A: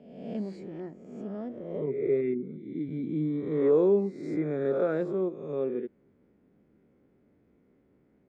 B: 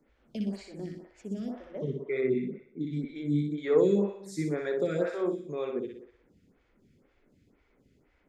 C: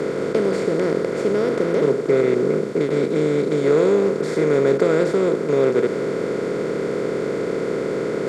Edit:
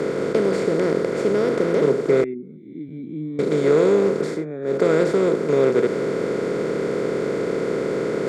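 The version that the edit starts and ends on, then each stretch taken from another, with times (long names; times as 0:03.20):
C
0:02.24–0:03.39: punch in from A
0:04.34–0:04.74: punch in from A, crossfade 0.24 s
not used: B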